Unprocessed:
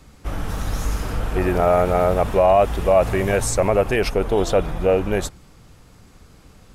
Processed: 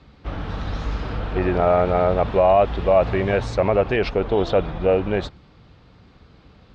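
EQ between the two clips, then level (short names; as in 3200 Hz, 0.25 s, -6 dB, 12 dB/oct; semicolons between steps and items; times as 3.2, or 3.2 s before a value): HPF 43 Hz; ladder low-pass 4800 Hz, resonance 45%; high shelf 3500 Hz -11.5 dB; +8.5 dB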